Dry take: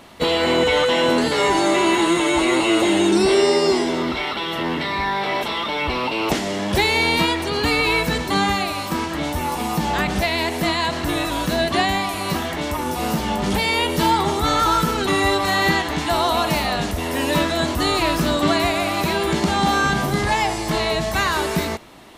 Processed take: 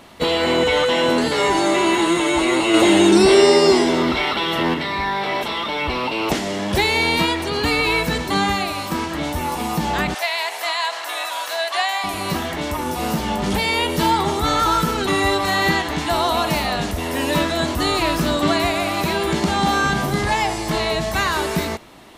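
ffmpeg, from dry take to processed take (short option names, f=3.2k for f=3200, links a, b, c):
-filter_complex "[0:a]asettb=1/sr,asplit=3[a][b][c];[a]atrim=end=10.144[d];[b]atrim=start=10.14:end=12.04,asetpts=PTS-STARTPTS,afade=t=in:d=0.004:c=qsin,afade=t=out:st=1.896:d=0.004:c=qsin,highpass=f=660:w=0.5412,highpass=f=660:w=1.3066[e];[c]atrim=start=12.036[f];[d][e]acrossfade=d=0.004:c1=hsin:c2=qsin[g];[g][f]acrossfade=d=0.004:c1=qsin:c2=hsin,asplit=3[h][i][j];[h]atrim=end=2.742[k];[i]atrim=start=2.738:end=4.742,asetpts=PTS-STARTPTS,volume=4dB[l];[j]atrim=start=4.738[m];[k][l]acrossfade=d=0.004:c1=hsin:c2=hsin[n];[n][m]acrossfade=d=0.004:c1=hsin:c2=hsin"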